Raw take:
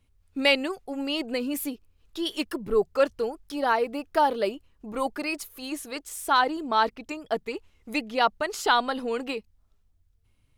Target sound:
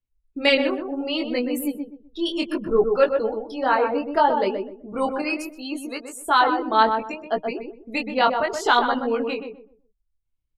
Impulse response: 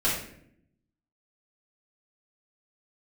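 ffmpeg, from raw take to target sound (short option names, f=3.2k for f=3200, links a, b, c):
-filter_complex "[0:a]afftdn=nr=25:nf=-41,highshelf=f=4.1k:g=-2.5,flanger=delay=16:depth=7.3:speed=0.67,asplit=2[a][b];[b]adelay=126,lowpass=f=980:p=1,volume=-4dB,asplit=2[c][d];[d]adelay=126,lowpass=f=980:p=1,volume=0.29,asplit=2[e][f];[f]adelay=126,lowpass=f=980:p=1,volume=0.29,asplit=2[g][h];[h]adelay=126,lowpass=f=980:p=1,volume=0.29[i];[a][c][e][g][i]amix=inputs=5:normalize=0,volume=6.5dB"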